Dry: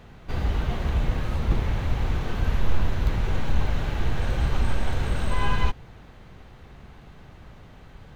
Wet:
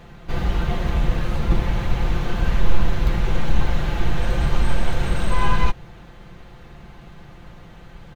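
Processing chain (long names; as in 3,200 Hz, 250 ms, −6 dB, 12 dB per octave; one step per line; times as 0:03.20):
comb filter 5.8 ms, depth 50%
level +3.5 dB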